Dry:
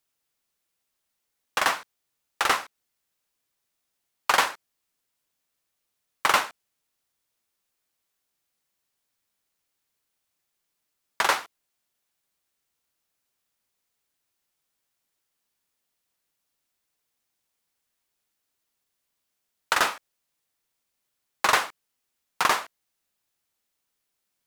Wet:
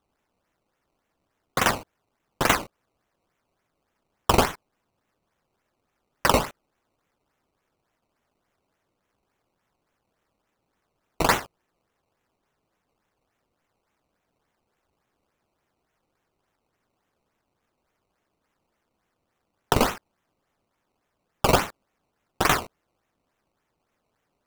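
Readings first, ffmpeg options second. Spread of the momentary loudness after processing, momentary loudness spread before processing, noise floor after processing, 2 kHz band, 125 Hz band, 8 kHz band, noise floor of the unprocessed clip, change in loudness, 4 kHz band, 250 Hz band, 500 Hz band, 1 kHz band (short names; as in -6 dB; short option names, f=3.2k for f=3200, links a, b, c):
9 LU, 9 LU, -78 dBFS, -2.0 dB, +21.0 dB, +1.0 dB, -80 dBFS, +1.0 dB, -0.5 dB, +14.0 dB, +8.0 dB, 0.0 dB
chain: -af "equalizer=f=4.7k:w=1.5:g=12.5,acrusher=samples=18:mix=1:aa=0.000001:lfo=1:lforange=18:lforate=3.5,volume=-1dB"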